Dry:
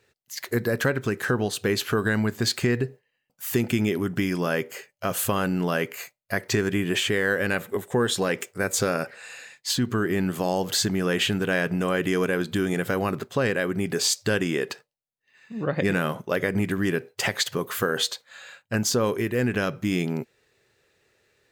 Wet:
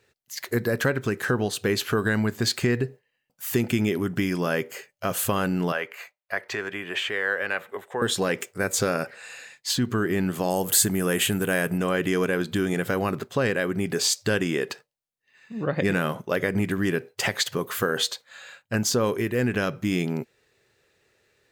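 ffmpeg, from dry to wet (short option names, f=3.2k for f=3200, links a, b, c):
-filter_complex "[0:a]asettb=1/sr,asplit=3[a][b][c];[a]atrim=end=5.724[d];[b]atrim=start=5.72:end=8.02,asetpts=PTS-STARTPTS,afade=t=in:d=0.004:c=qsin,afade=t=out:st=2.296:d=0.004:c=qsin,acrossover=split=490 3600:gain=0.141 1 0.224[e][f][g];[e][f][g]amix=inputs=3:normalize=0[h];[c]atrim=start=8.016[i];[d][h]acrossfade=d=0.004:c1=hsin:c2=qsin[j];[j][i]acrossfade=d=0.004:c1=qsin:c2=hsin,asettb=1/sr,asplit=3[k][l][m];[k]atrim=end=10.504[n];[l]atrim=start=10.5:end=11.78,asetpts=PTS-STARTPTS,afade=t=in:d=0.004:c=qsin,afade=t=out:st=1.276:d=0.004:c=qsin,highshelf=f=7.1k:t=q:w=1.5:g=11.5[o];[m]atrim=start=11.776[p];[n][o]acrossfade=d=0.004:c1=hsin:c2=qsin[q];[q][p]acrossfade=d=0.004:c1=qsin:c2=hsin"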